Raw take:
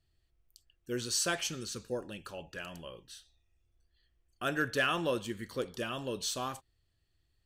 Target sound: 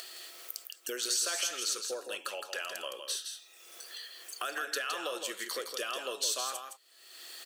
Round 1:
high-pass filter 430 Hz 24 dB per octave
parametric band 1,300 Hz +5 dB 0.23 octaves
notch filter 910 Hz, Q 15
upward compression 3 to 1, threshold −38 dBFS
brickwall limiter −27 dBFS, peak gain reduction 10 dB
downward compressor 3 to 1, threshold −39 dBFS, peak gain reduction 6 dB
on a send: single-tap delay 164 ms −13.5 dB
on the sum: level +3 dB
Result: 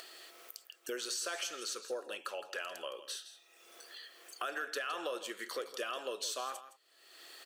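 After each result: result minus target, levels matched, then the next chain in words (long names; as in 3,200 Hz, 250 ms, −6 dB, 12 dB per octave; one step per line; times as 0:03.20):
echo-to-direct −7 dB; 8,000 Hz band −3.5 dB
high-pass filter 430 Hz 24 dB per octave
parametric band 1,300 Hz +5 dB 0.23 octaves
notch filter 910 Hz, Q 15
upward compression 3 to 1, threshold −38 dBFS
brickwall limiter −27 dBFS, peak gain reduction 10 dB
downward compressor 3 to 1, threshold −39 dBFS, peak gain reduction 6 dB
on a send: single-tap delay 164 ms −6.5 dB
on the sum: level +3 dB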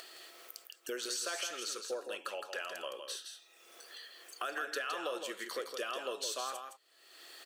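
8,000 Hz band −3.5 dB
high-pass filter 430 Hz 24 dB per octave
parametric band 1,300 Hz +5 dB 0.23 octaves
notch filter 910 Hz, Q 15
upward compression 3 to 1, threshold −38 dBFS
brickwall limiter −27 dBFS, peak gain reduction 10 dB
downward compressor 3 to 1, threshold −39 dBFS, peak gain reduction 6 dB
high-shelf EQ 3,000 Hz +9.5 dB
on a send: single-tap delay 164 ms −6.5 dB
on the sum: level +3 dB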